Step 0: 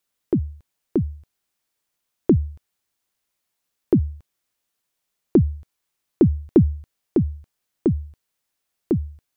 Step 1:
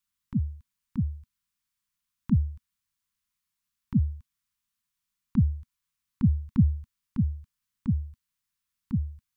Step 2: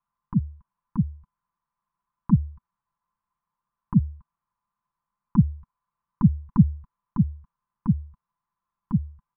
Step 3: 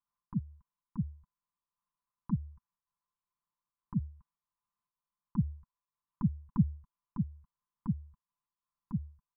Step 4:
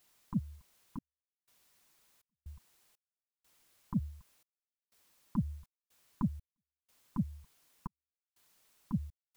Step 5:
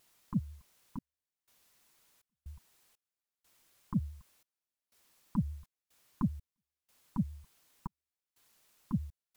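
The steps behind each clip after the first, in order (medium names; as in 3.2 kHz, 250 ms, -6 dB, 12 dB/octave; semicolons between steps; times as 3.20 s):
elliptic band-stop 230–1000 Hz; bass shelf 170 Hz +6 dB; trim -6 dB
resonant low-pass 1 kHz, resonance Q 4.9; comb 5.9 ms, depth 58%; trim +3 dB
random flutter of the level, depth 60%; trim -8 dB
compression, threshold -32 dBFS, peak gain reduction 11.5 dB; added noise white -74 dBFS; trance gate "xxxx..xxx.xx.." 61 bpm -60 dB; trim +4 dB
vibrato 10 Hz 59 cents; trim +1 dB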